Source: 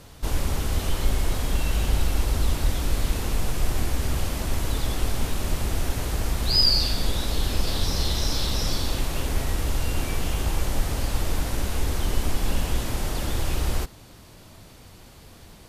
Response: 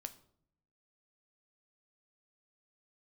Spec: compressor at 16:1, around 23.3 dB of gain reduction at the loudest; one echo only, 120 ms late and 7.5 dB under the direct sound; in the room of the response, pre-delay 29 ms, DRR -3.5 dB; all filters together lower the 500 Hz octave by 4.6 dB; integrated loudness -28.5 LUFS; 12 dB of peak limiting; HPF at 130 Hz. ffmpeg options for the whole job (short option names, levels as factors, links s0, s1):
-filter_complex "[0:a]highpass=130,equalizer=f=500:t=o:g=-6,acompressor=threshold=0.01:ratio=16,alimiter=level_in=7.94:limit=0.0631:level=0:latency=1,volume=0.126,aecho=1:1:120:0.422,asplit=2[s0][s1];[1:a]atrim=start_sample=2205,adelay=29[s2];[s1][s2]afir=irnorm=-1:irlink=0,volume=2.37[s3];[s0][s3]amix=inputs=2:normalize=0,volume=5.96"